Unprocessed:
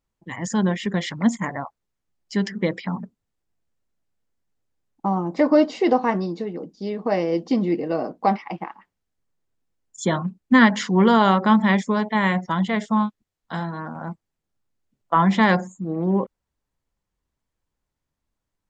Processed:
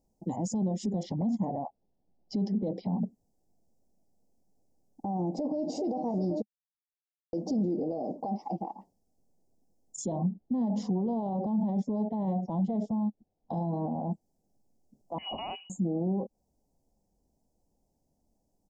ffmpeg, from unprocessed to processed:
ffmpeg -i in.wav -filter_complex "[0:a]asettb=1/sr,asplit=3[link_01][link_02][link_03];[link_01]atrim=end=1.034[link_04];[link_02]atrim=start=1.03:end=2.98,asetpts=PTS-STARTPTS,afade=type=in:duration=0.004:curve=qsin,afade=type=out:start_time=1.946:duration=0.004:curve=qsin,lowpass=frequency=4100:width=0.5412,lowpass=frequency=4100:width=1.3066[link_05];[link_03]atrim=start=2.976[link_06];[link_04][link_05]acrossfade=duration=0.004:curve1=hsin:curve2=qsin[link_07];[link_07][link_06]acrossfade=duration=0.004:curve1=qsin:curve2=hsin,asplit=2[link_08][link_09];[link_09]afade=type=in:start_time=5.12:duration=0.01,afade=type=out:start_time=5.82:duration=0.01,aecho=0:1:390|780|1170|1560|1950|2340|2730:0.16788|0.109122|0.0709295|0.0461042|0.0299677|0.019479|0.0126614[link_10];[link_08][link_10]amix=inputs=2:normalize=0,asettb=1/sr,asplit=3[link_11][link_12][link_13];[link_11]atrim=end=7.974[link_14];[link_12]atrim=start=7.97:end=8.64,asetpts=PTS-STARTPTS,afade=type=in:duration=0.004:curve=qsin,afade=type=out:start_time=0.666:duration=0.004:curve=qsin,acompressor=threshold=-31dB:ratio=1.5:attack=3.2:release=140:knee=1:detection=peak[link_15];[link_13]atrim=start=8.636[link_16];[link_14][link_15]acrossfade=duration=0.004:curve1=hsin:curve2=qsin[link_17];[link_17][link_16]acrossfade=duration=0.004:curve1=qsin:curve2=hsin,asettb=1/sr,asplit=3[link_18][link_19][link_20];[link_18]atrim=end=10.124[link_21];[link_19]atrim=start=10.12:end=14.11,asetpts=PTS-STARTPTS,afade=type=in:duration=0.004:curve=qsin,afade=type=out:start_time=3.986:duration=0.004:curve=qsin,lowpass=2900[link_22];[link_20]atrim=start=14.106[link_23];[link_21][link_22]acrossfade=duration=0.004:curve1=hsin:curve2=qsin[link_24];[link_24][link_23]acrossfade=duration=0.004:curve1=qsin:curve2=hsin,asettb=1/sr,asplit=3[link_25][link_26][link_27];[link_25]atrim=end=15.184[link_28];[link_26]atrim=start=15.18:end=15.7,asetpts=PTS-STARTPTS,afade=type=in:duration=0.004:curve=qsin,afade=type=out:start_time=0.516:duration=0.004:curve=qsin,lowpass=frequency=2600:width_type=q:width=0.5098,lowpass=frequency=2600:width_type=q:width=0.6013,lowpass=frequency=2600:width_type=q:width=0.9,lowpass=frequency=2600:width_type=q:width=2.563,afreqshift=-3100[link_29];[link_27]atrim=start=15.696[link_30];[link_28][link_29]acrossfade=duration=0.004:curve1=hsin:curve2=qsin[link_31];[link_31][link_30]acrossfade=duration=0.004:curve1=qsin:curve2=hsin,asplit=3[link_32][link_33][link_34];[link_32]atrim=end=6.42,asetpts=PTS-STARTPTS,afade=type=out:start_time=6.416:duration=0.004:curve=hsin[link_35];[link_33]atrim=start=6.42:end=7.33,asetpts=PTS-STARTPTS,volume=0[link_36];[link_34]atrim=start=7.33,asetpts=PTS-STARTPTS,afade=type=in:duration=0.004:curve=hsin[link_37];[link_35][link_36][link_37]concat=n=3:v=0:a=1,firequalizer=gain_entry='entry(120,0);entry(210,10);entry(350,8);entry(770,15);entry(1400,-28);entry(5200,9)':delay=0.05:min_phase=1,alimiter=level_in=1dB:limit=-24dB:level=0:latency=1:release=162,volume=-1dB,lowshelf=frequency=420:gain=10,volume=-5dB" out.wav

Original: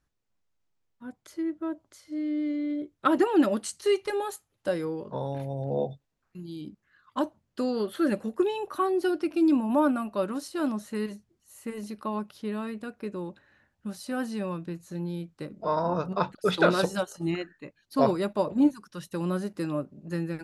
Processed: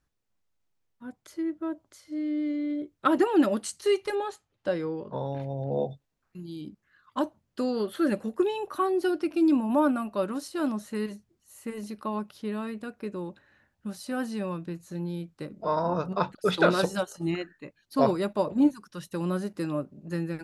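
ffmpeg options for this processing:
ffmpeg -i in.wav -filter_complex "[0:a]asettb=1/sr,asplit=3[link_01][link_02][link_03];[link_01]atrim=end=4.154[link_04];[link_02]atrim=start=4.15:end=5.73,asetpts=PTS-STARTPTS,afade=type=in:duration=0.004:curve=qsin,afade=type=out:start_time=1.576:duration=0.004:curve=qsin,lowpass=5100[link_05];[link_03]atrim=start=5.726[link_06];[link_04][link_05]acrossfade=duration=0.004:curve1=hsin:curve2=qsin[link_07];[link_07][link_06]acrossfade=duration=0.004:curve1=qsin:curve2=hsin" out.wav

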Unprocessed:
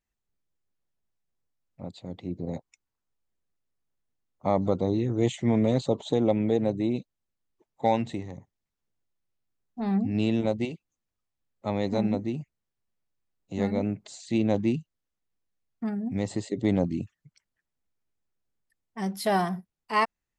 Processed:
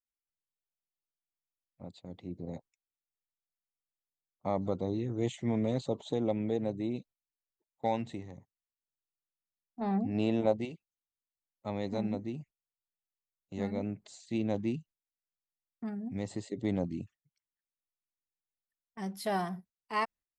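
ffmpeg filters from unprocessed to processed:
ffmpeg -i in.wav -filter_complex "[0:a]asettb=1/sr,asplit=3[link_01][link_02][link_03];[link_01]atrim=end=9.814[link_04];[link_02]atrim=start=9.81:end=10.61,asetpts=PTS-STARTPTS,afade=type=in:duration=0.004:curve=qsin,afade=type=out:start_time=0.796:duration=0.004:curve=qsin,equalizer=frequency=720:width_type=o:width=2.1:gain=9[link_05];[link_03]atrim=start=10.606[link_06];[link_04][link_05]acrossfade=duration=0.004:curve1=hsin:curve2=qsin[link_07];[link_07][link_06]acrossfade=duration=0.004:curve1=qsin:curve2=hsin,agate=range=-13dB:threshold=-46dB:ratio=16:detection=peak,volume=-7.5dB" out.wav

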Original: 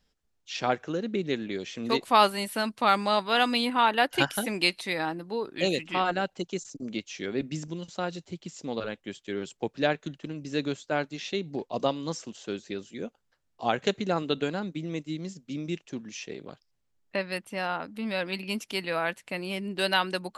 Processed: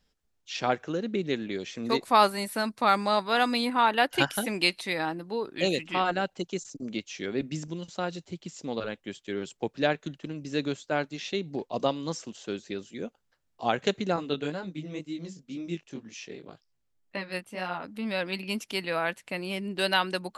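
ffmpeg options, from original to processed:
ffmpeg -i in.wav -filter_complex "[0:a]asettb=1/sr,asplit=3[link_01][link_02][link_03];[link_01]atrim=end=1.714[link_04];[link_02]atrim=start=1.71:end=3.9,asetpts=PTS-STARTPTS,afade=type=in:duration=0.004:curve=qsin,afade=type=out:start_time=2.186:duration=0.004:curve=qsin,equalizer=frequency=3000:width_type=o:width=0.31:gain=-8[link_05];[link_03]atrim=start=3.896[link_06];[link_04][link_05]acrossfade=duration=0.004:curve1=hsin:curve2=qsin[link_07];[link_07][link_06]acrossfade=duration=0.004:curve1=qsin:curve2=hsin,asettb=1/sr,asplit=3[link_08][link_09][link_10];[link_08]atrim=end=14.164[link_11];[link_09]atrim=start=14.16:end=17.84,asetpts=PTS-STARTPTS,afade=type=in:duration=0.004:curve=qsin,afade=type=out:start_time=3.676:duration=0.004:curve=qsin,flanger=delay=16:depth=6.3:speed=2[link_12];[link_10]atrim=start=17.836[link_13];[link_11][link_12]acrossfade=duration=0.004:curve1=hsin:curve2=qsin[link_14];[link_14][link_13]acrossfade=duration=0.004:curve1=qsin:curve2=hsin" out.wav

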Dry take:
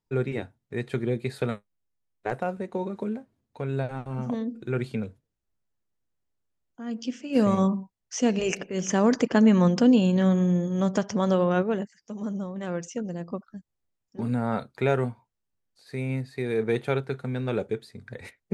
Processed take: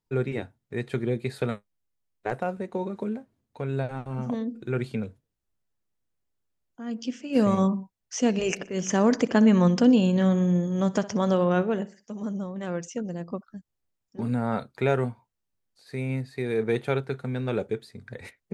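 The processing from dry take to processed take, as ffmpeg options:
ffmpeg -i in.wav -filter_complex "[0:a]asplit=3[link_01][link_02][link_03];[link_01]afade=type=out:start_time=8.63:duration=0.02[link_04];[link_02]aecho=1:1:62|124|186:0.119|0.044|0.0163,afade=type=in:start_time=8.63:duration=0.02,afade=type=out:start_time=12.24:duration=0.02[link_05];[link_03]afade=type=in:start_time=12.24:duration=0.02[link_06];[link_04][link_05][link_06]amix=inputs=3:normalize=0" out.wav

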